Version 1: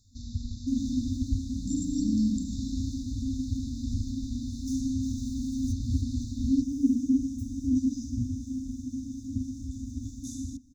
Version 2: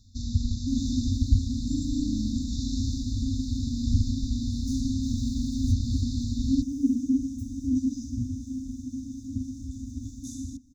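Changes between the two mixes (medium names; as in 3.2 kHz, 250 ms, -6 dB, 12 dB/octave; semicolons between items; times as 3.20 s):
speech -6.5 dB; first sound +8.0 dB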